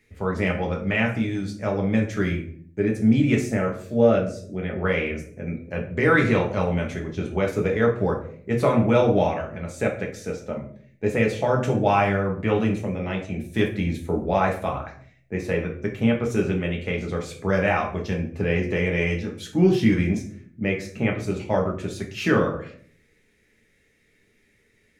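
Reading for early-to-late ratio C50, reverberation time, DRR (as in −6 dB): 9.0 dB, 0.55 s, −0.5 dB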